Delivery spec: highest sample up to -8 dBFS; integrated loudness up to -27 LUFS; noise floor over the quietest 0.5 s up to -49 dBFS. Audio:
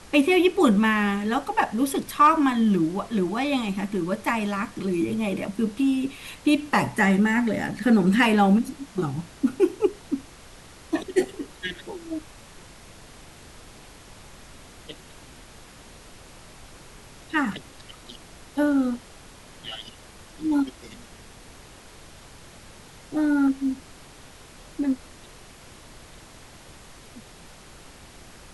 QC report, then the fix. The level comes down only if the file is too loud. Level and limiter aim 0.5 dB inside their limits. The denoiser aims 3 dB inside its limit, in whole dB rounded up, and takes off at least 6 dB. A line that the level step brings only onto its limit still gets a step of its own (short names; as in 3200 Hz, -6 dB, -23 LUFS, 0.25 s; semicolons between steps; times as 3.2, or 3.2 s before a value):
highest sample -6.5 dBFS: fail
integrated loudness -24.0 LUFS: fail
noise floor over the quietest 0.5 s -47 dBFS: fail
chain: gain -3.5 dB